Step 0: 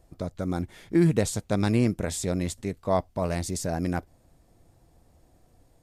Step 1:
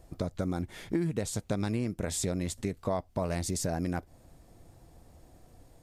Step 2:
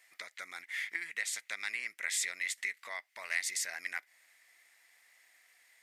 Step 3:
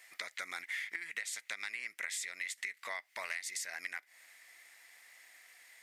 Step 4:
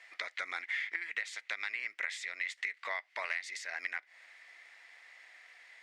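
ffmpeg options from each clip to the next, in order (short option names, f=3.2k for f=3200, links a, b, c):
-af "acompressor=threshold=-32dB:ratio=6,volume=4dB"
-af "highpass=f=2k:t=q:w=7.4"
-af "acompressor=threshold=-42dB:ratio=12,volume=6dB"
-af "highpass=350,lowpass=3.7k,volume=4dB"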